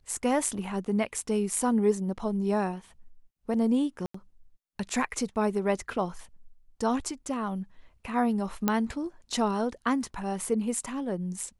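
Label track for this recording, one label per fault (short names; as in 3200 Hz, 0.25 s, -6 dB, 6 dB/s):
4.060000	4.140000	gap 84 ms
8.680000	8.680000	pop -10 dBFS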